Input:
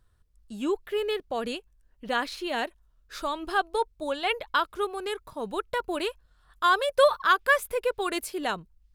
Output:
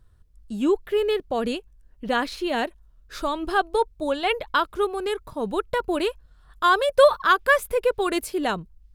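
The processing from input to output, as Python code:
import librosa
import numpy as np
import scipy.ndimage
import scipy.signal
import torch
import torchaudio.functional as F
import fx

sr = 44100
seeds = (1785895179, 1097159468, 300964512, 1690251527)

y = fx.low_shelf(x, sr, hz=480.0, db=7.5)
y = y * 10.0 ** (2.0 / 20.0)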